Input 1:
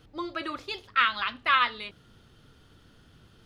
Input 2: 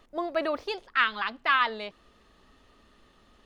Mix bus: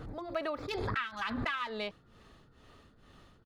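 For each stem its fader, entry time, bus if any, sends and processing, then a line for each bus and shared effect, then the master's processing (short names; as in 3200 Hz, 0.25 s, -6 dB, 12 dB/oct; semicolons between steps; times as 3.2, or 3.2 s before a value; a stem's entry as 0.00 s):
-6.5 dB, 0.00 s, no send, Wiener smoothing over 15 samples; backwards sustainer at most 35 dB/s
+1.5 dB, 0.5 ms, no send, beating tremolo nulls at 2.2 Hz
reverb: off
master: compressor 10:1, threshold -31 dBFS, peak gain reduction 14.5 dB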